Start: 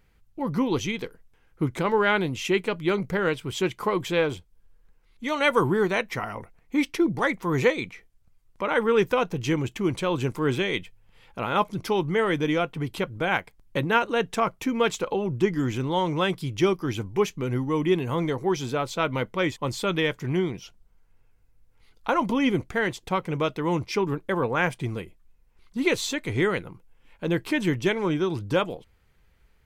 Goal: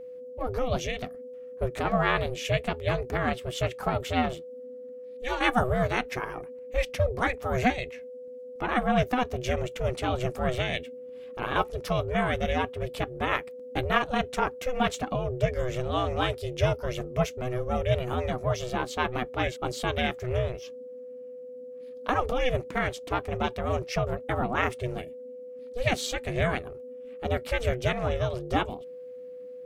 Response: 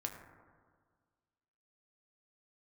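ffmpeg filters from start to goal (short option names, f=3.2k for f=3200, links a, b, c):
-af "aeval=exprs='val(0)*sin(2*PI*250*n/s)':c=same,aeval=exprs='val(0)+0.0112*sin(2*PI*500*n/s)':c=same"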